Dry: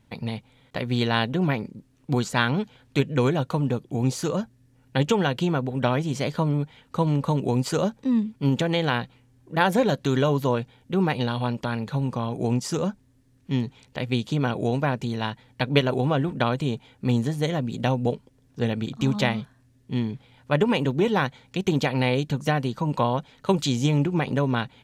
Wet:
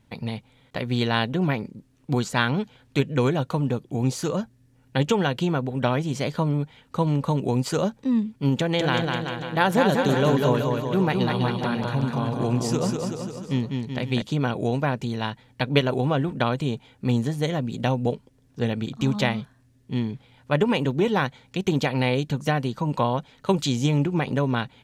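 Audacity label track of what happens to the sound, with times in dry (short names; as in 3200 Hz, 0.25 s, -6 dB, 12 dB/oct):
8.580000	14.220000	bouncing-ball echo first gap 0.2 s, each gap 0.9×, echoes 5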